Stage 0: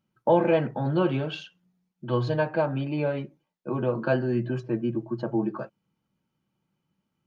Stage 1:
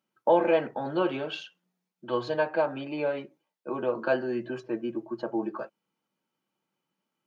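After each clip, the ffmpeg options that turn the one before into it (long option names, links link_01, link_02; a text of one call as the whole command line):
ffmpeg -i in.wav -af "highpass=340" out.wav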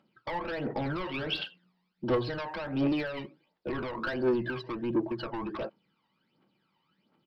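ffmpeg -i in.wav -af "acompressor=threshold=-31dB:ratio=12,aresample=11025,asoftclip=type=tanh:threshold=-38dB,aresample=44100,aphaser=in_gain=1:out_gain=1:delay=1.1:decay=0.68:speed=1.4:type=triangular,volume=7.5dB" out.wav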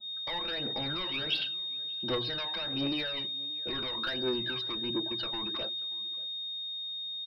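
ffmpeg -i in.wav -filter_complex "[0:a]asplit=2[link_01][link_02];[link_02]adelay=583.1,volume=-22dB,highshelf=frequency=4000:gain=-13.1[link_03];[link_01][link_03]amix=inputs=2:normalize=0,aeval=exprs='val(0)+0.0178*sin(2*PI*3700*n/s)':channel_layout=same,adynamicequalizer=threshold=0.00398:dfrequency=1600:dqfactor=0.7:tfrequency=1600:tqfactor=0.7:attack=5:release=100:ratio=0.375:range=4:mode=boostabove:tftype=highshelf,volume=-6dB" out.wav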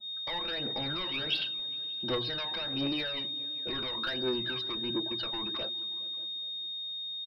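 ffmpeg -i in.wav -filter_complex "[0:a]asplit=2[link_01][link_02];[link_02]adelay=416,lowpass=frequency=1300:poles=1,volume=-21.5dB,asplit=2[link_03][link_04];[link_04]adelay=416,lowpass=frequency=1300:poles=1,volume=0.52,asplit=2[link_05][link_06];[link_06]adelay=416,lowpass=frequency=1300:poles=1,volume=0.52,asplit=2[link_07][link_08];[link_08]adelay=416,lowpass=frequency=1300:poles=1,volume=0.52[link_09];[link_01][link_03][link_05][link_07][link_09]amix=inputs=5:normalize=0" out.wav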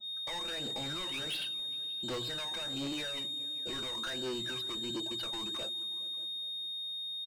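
ffmpeg -i in.wav -af "asoftclip=type=tanh:threshold=-33.5dB" out.wav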